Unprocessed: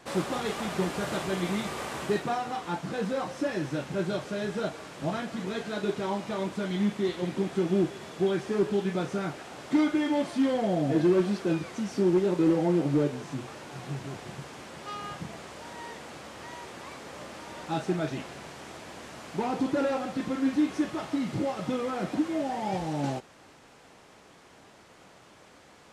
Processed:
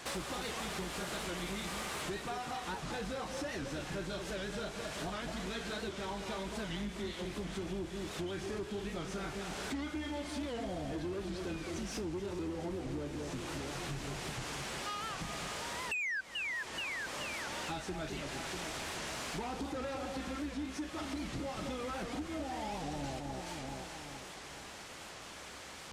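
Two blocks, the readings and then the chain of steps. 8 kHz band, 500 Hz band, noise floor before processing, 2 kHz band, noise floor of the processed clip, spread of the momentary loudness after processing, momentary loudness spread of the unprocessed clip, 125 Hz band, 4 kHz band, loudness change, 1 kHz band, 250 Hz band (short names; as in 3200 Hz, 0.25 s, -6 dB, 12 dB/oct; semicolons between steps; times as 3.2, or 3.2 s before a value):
+1.0 dB, -11.5 dB, -55 dBFS, -1.0 dB, -48 dBFS, 3 LU, 17 LU, -9.5 dB, -0.5 dB, -10.0 dB, -7.0 dB, -12.5 dB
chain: octaver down 2 oct, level -5 dB; painted sound fall, 15.92–16.21, 1500–3000 Hz -20 dBFS; tilt shelf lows -5 dB, about 1300 Hz; echo with dull and thin repeats by turns 0.214 s, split 1100 Hz, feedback 65%, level -8 dB; compressor 6:1, threshold -41 dBFS, peak gain reduction 22 dB; soft clip -37 dBFS, distortion -18 dB; record warp 78 rpm, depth 160 cents; gain +5.5 dB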